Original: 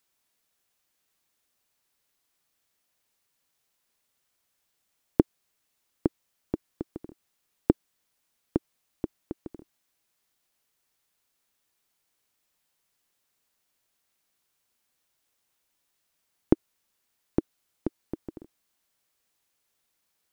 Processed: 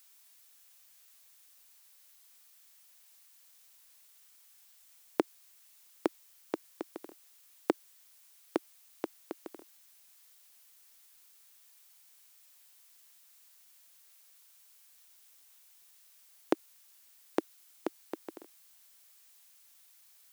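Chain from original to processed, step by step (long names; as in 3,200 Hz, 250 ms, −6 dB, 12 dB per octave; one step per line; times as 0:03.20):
high-pass filter 510 Hz 12 dB per octave
spectral tilt +2.5 dB per octave
brickwall limiter −18.5 dBFS, peak gain reduction 3.5 dB
level +7 dB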